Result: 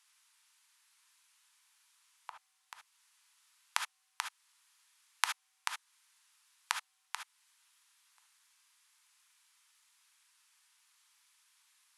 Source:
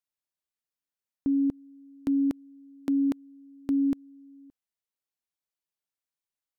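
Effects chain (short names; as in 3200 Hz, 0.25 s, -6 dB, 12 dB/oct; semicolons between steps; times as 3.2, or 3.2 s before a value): wide varispeed 0.55×; in parallel at +2 dB: compressor, threshold -40 dBFS, peak gain reduction 15.5 dB; on the sum: elliptic high-pass 940 Hz, stop band 60 dB; non-linear reverb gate 90 ms rising, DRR 5.5 dB; gain +14.5 dB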